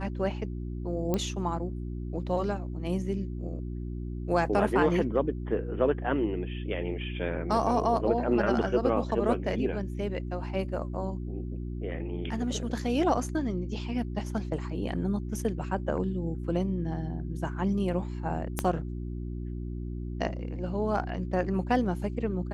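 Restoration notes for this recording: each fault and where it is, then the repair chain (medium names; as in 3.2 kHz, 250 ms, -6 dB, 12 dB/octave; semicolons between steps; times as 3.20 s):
hum 60 Hz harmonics 6 -35 dBFS
1.14 s: pop -15 dBFS
18.59 s: pop -12 dBFS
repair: de-click; de-hum 60 Hz, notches 6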